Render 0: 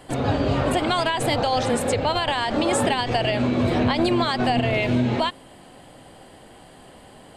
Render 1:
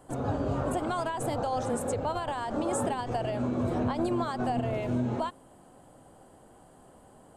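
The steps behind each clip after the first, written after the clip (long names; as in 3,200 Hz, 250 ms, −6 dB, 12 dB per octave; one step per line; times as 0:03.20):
flat-topped bell 3,000 Hz −11.5 dB
level −8 dB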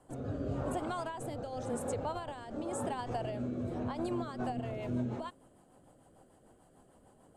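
rotating-speaker cabinet horn 0.9 Hz, later 6.7 Hz, at 0:03.94
level −5 dB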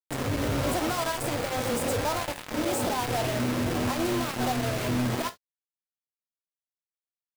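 log-companded quantiser 2 bits
reverb whose tail is shaped and stops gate 90 ms falling, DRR 7.5 dB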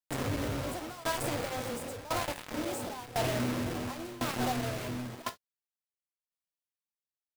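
shaped tremolo saw down 0.95 Hz, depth 90%
level −1.5 dB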